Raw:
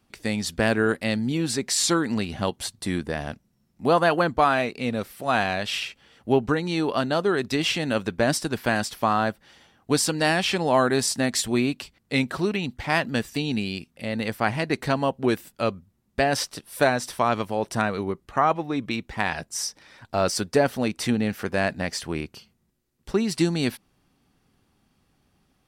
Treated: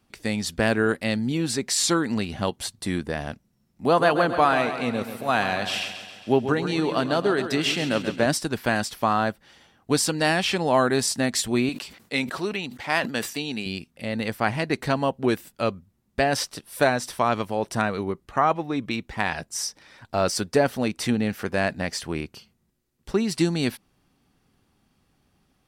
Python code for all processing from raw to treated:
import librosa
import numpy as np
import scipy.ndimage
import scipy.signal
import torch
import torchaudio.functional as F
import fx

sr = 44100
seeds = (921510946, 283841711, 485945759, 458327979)

y = fx.chain(x, sr, fx.highpass(hz=100.0, slope=12),
    fx.echo_feedback(ms=135, feedback_pct=57, wet_db=-10.0), at=(3.85, 8.26))
y = fx.chain(y, sr, fx.highpass(hz=390.0, slope=6),
    fx.sustainer(db_per_s=100.0), at=(11.69, 13.66))